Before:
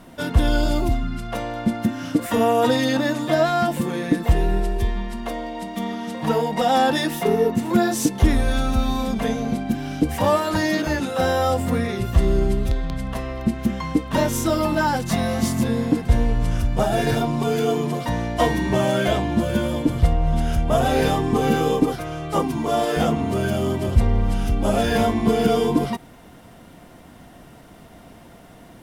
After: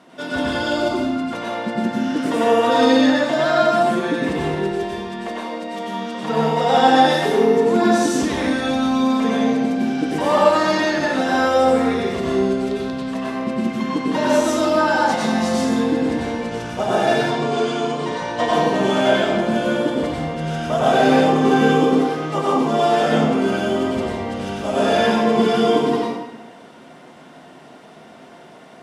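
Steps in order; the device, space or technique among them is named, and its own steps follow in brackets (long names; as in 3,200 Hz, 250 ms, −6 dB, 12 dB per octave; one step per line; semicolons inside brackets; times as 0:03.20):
supermarket ceiling speaker (band-pass filter 270–6,800 Hz; convolution reverb RT60 1.1 s, pre-delay 86 ms, DRR −5.5 dB)
0:17.31–0:18.53: elliptic low-pass filter 9,300 Hz, stop band 40 dB
level −1.5 dB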